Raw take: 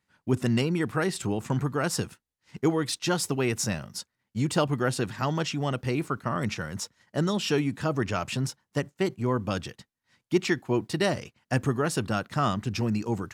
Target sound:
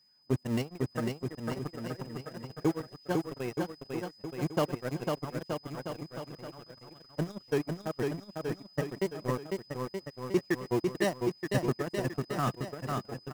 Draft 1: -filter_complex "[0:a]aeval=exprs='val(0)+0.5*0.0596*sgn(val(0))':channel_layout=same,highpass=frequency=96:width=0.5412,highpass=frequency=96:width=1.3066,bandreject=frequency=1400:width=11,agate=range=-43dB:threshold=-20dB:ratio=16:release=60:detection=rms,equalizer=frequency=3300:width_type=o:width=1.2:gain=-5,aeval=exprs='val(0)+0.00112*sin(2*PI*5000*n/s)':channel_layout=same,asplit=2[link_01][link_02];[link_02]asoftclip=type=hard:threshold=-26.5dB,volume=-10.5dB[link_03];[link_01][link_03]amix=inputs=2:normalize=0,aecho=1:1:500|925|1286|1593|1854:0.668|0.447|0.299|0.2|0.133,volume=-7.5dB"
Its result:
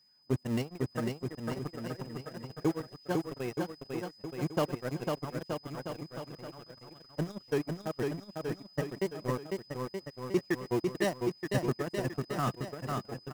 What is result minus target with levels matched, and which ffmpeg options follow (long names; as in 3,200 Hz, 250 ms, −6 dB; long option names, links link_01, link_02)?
hard clipping: distortion +14 dB
-filter_complex "[0:a]aeval=exprs='val(0)+0.5*0.0596*sgn(val(0))':channel_layout=same,highpass=frequency=96:width=0.5412,highpass=frequency=96:width=1.3066,bandreject=frequency=1400:width=11,agate=range=-43dB:threshold=-20dB:ratio=16:release=60:detection=rms,equalizer=frequency=3300:width_type=o:width=1.2:gain=-5,aeval=exprs='val(0)+0.00112*sin(2*PI*5000*n/s)':channel_layout=same,asplit=2[link_01][link_02];[link_02]asoftclip=type=hard:threshold=-15dB,volume=-10.5dB[link_03];[link_01][link_03]amix=inputs=2:normalize=0,aecho=1:1:500|925|1286|1593|1854:0.668|0.447|0.299|0.2|0.133,volume=-7.5dB"